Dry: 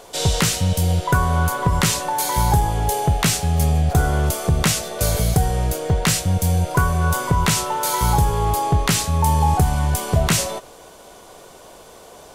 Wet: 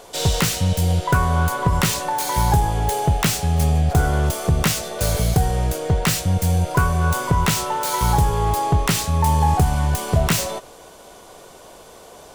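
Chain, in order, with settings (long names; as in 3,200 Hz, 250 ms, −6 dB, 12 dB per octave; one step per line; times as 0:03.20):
phase distortion by the signal itself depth 0.058 ms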